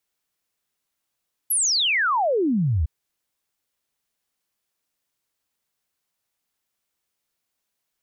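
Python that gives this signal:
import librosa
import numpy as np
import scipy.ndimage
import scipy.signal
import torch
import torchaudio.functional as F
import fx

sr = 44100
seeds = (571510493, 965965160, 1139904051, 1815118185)

y = fx.ess(sr, length_s=1.36, from_hz=12000.0, to_hz=68.0, level_db=-18.0)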